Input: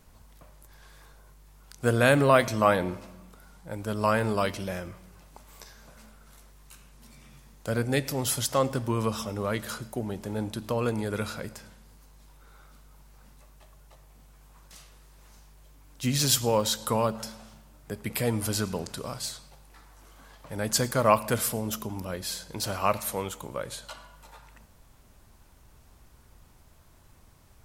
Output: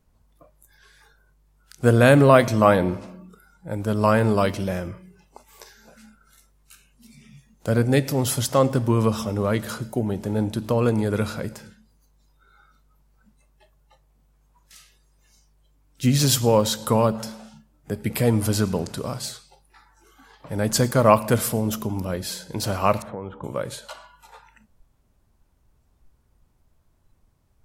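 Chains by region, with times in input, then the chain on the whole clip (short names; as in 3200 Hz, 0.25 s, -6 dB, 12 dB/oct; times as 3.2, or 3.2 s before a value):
23.02–23.44 LPF 1400 Hz + compressor 4:1, threshold -35 dBFS
whole clip: spectral noise reduction 16 dB; tilt shelf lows +3.5 dB, about 720 Hz; gain +5.5 dB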